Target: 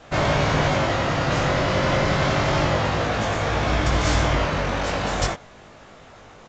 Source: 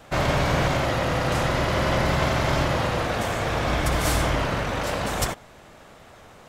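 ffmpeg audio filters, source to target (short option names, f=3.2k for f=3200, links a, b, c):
-af "flanger=delay=19:depth=2.3:speed=0.31,aresample=16000,aresample=44100,acontrast=27"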